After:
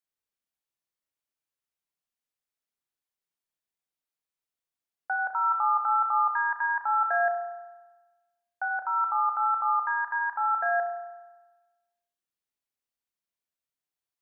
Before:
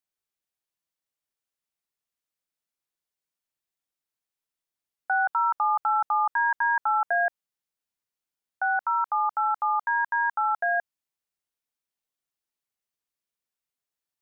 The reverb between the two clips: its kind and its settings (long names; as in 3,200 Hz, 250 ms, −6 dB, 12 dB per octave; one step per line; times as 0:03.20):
spring reverb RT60 1.2 s, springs 30 ms, chirp 20 ms, DRR 4 dB
level −4 dB